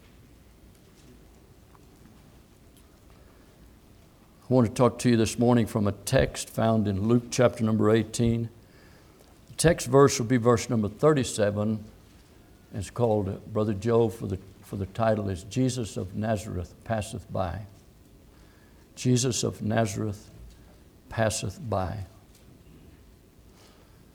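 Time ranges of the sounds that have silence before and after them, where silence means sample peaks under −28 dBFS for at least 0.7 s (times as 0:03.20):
0:04.50–0:08.45
0:09.59–0:11.76
0:12.76–0:17.57
0:19.00–0:20.12
0:21.15–0:22.00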